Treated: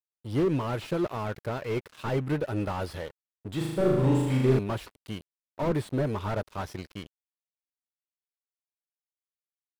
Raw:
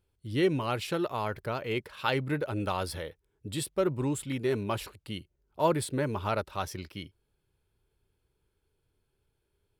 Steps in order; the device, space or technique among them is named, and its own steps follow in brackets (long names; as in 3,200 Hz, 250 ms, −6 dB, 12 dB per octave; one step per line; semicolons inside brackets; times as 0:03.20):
early transistor amplifier (dead-zone distortion −47 dBFS; slew-rate limiting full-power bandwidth 20 Hz)
0:03.57–0:04.59: flutter between parallel walls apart 6.6 metres, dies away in 1.2 s
level +4 dB